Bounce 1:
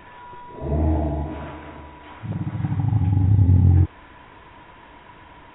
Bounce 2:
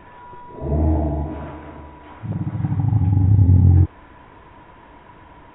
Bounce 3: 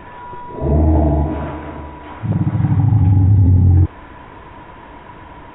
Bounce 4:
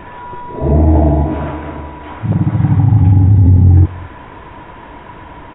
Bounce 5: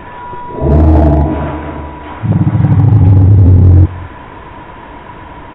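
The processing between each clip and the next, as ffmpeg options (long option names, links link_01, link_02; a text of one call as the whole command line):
ffmpeg -i in.wav -af "highshelf=frequency=2000:gain=-10.5,volume=2.5dB" out.wav
ffmpeg -i in.wav -af "alimiter=limit=-13.5dB:level=0:latency=1:release=25,volume=8dB" out.wav
ffmpeg -i in.wav -filter_complex "[0:a]asplit=2[link_01][link_02];[link_02]adelay=221.6,volume=-22dB,highshelf=frequency=4000:gain=-4.99[link_03];[link_01][link_03]amix=inputs=2:normalize=0,volume=3.5dB" out.wav
ffmpeg -i in.wav -af "asoftclip=type=hard:threshold=-4.5dB,volume=3.5dB" out.wav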